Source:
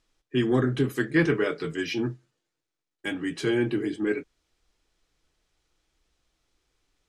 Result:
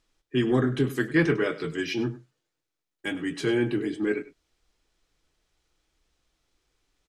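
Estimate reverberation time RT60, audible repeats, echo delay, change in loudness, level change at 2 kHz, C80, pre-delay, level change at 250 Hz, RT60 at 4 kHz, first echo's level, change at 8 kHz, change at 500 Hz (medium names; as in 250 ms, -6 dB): no reverb, 1, 100 ms, 0.0 dB, 0.0 dB, no reverb, no reverb, 0.0 dB, no reverb, -16.5 dB, 0.0 dB, 0.0 dB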